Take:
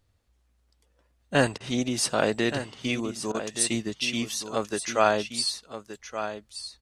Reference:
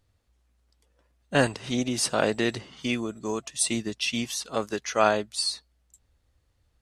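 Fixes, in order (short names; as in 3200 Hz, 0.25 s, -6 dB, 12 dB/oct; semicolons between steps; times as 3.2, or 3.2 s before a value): interpolate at 1.58/3.32, 23 ms; inverse comb 1.174 s -10.5 dB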